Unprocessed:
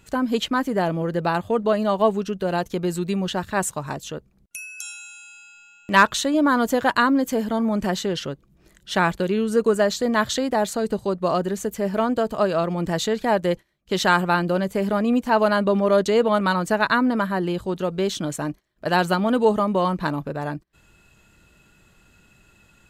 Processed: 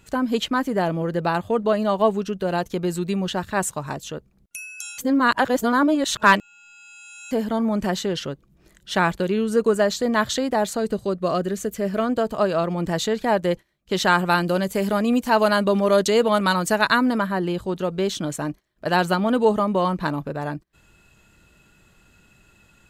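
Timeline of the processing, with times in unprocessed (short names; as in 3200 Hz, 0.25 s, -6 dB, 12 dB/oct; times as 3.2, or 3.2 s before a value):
4.98–7.31 reverse
10.92–12.09 bell 890 Hz -12 dB 0.25 oct
14.25–17.18 high shelf 3600 Hz +9.5 dB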